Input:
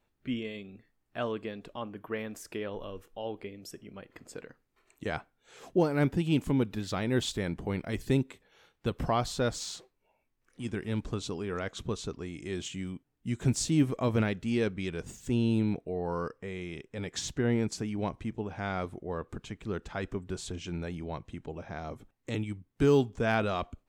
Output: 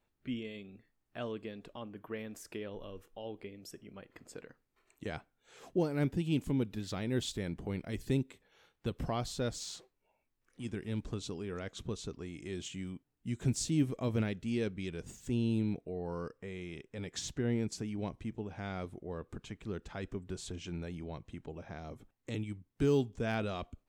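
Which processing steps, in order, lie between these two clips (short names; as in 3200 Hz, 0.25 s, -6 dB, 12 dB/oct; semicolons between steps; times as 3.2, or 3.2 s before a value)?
dynamic EQ 1100 Hz, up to -6 dB, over -45 dBFS, Q 0.71; gain -4 dB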